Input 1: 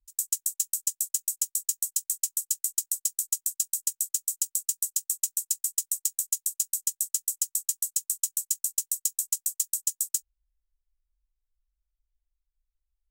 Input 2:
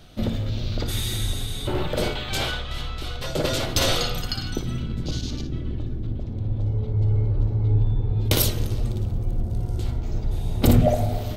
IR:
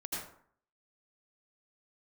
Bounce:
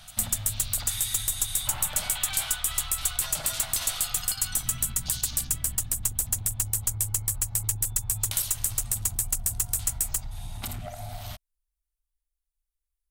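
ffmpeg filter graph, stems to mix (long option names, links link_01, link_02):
-filter_complex "[0:a]highshelf=frequency=9300:gain=6.5,volume=-4.5dB[link_01];[1:a]firequalizer=gain_entry='entry(170,0);entry(390,-24);entry(670,8)':delay=0.05:min_phase=1,acompressor=threshold=-27dB:ratio=6,volume=-4.5dB[link_02];[link_01][link_02]amix=inputs=2:normalize=0,aeval=exprs='clip(val(0),-1,0.0335)':channel_layout=same,equalizer=frequency=160:width_type=o:width=0.67:gain=-4,equalizer=frequency=630:width_type=o:width=0.67:gain=-5,equalizer=frequency=10000:width_type=o:width=0.67:gain=8"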